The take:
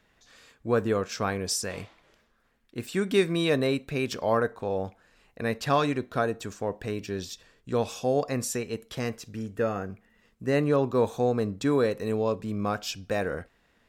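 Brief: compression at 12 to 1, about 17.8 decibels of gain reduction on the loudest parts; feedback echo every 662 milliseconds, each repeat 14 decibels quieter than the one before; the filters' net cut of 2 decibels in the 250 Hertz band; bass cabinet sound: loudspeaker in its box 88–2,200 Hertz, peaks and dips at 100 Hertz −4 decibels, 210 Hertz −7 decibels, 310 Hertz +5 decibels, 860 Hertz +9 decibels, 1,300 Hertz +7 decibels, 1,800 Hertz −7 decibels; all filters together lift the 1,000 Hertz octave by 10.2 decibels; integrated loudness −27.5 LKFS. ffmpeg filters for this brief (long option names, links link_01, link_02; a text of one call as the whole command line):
ffmpeg -i in.wav -af "equalizer=frequency=250:width_type=o:gain=-4,equalizer=frequency=1000:width_type=o:gain=6.5,acompressor=threshold=-35dB:ratio=12,highpass=frequency=88:width=0.5412,highpass=frequency=88:width=1.3066,equalizer=frequency=100:width_type=q:width=4:gain=-4,equalizer=frequency=210:width_type=q:width=4:gain=-7,equalizer=frequency=310:width_type=q:width=4:gain=5,equalizer=frequency=860:width_type=q:width=4:gain=9,equalizer=frequency=1300:width_type=q:width=4:gain=7,equalizer=frequency=1800:width_type=q:width=4:gain=-7,lowpass=frequency=2200:width=0.5412,lowpass=frequency=2200:width=1.3066,aecho=1:1:662|1324:0.2|0.0399,volume=12dB" out.wav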